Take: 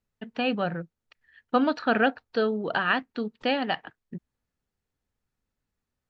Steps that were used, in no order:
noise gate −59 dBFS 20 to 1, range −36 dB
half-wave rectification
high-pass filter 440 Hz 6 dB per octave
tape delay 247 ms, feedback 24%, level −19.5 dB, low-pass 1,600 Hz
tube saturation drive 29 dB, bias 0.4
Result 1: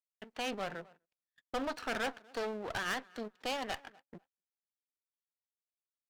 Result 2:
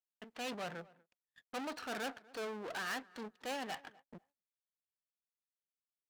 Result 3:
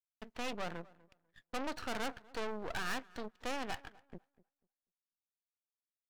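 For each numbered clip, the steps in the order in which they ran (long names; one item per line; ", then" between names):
tape delay, then half-wave rectification, then high-pass filter, then tube saturation, then noise gate
tube saturation, then half-wave rectification, then tape delay, then noise gate, then high-pass filter
tube saturation, then high-pass filter, then noise gate, then tape delay, then half-wave rectification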